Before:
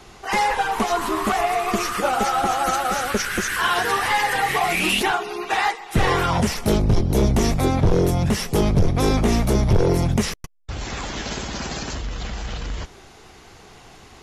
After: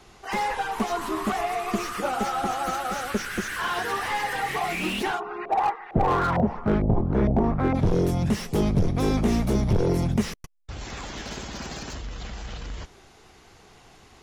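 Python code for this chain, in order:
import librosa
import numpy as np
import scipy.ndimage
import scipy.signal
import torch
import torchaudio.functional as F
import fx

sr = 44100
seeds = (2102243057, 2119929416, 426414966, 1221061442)

y = fx.dynamic_eq(x, sr, hz=220.0, q=1.0, threshold_db=-30.0, ratio=4.0, max_db=5)
y = fx.filter_lfo_lowpass(y, sr, shape='saw_up', hz=2.2, low_hz=590.0, high_hz=2000.0, q=2.9, at=(5.19, 7.74), fade=0.02)
y = fx.slew_limit(y, sr, full_power_hz=210.0)
y = F.gain(torch.from_numpy(y), -6.5).numpy()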